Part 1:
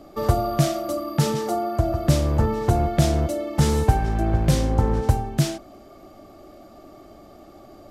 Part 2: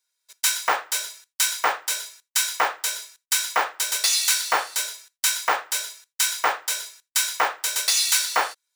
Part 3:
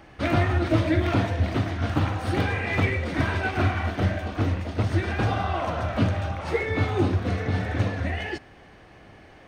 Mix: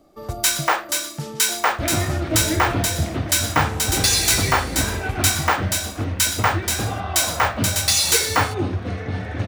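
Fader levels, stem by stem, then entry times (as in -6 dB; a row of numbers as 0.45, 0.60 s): -10.0, +2.5, -1.0 dB; 0.00, 0.00, 1.60 s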